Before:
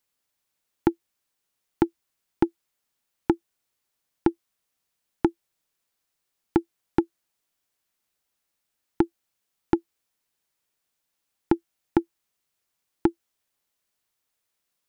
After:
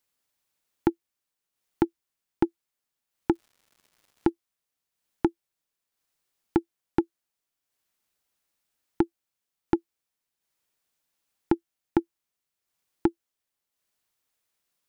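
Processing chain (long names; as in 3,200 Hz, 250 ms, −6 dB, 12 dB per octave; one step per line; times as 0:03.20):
transient designer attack −2 dB, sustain −6 dB
0:03.33–0:04.28: surface crackle 280 per second −50 dBFS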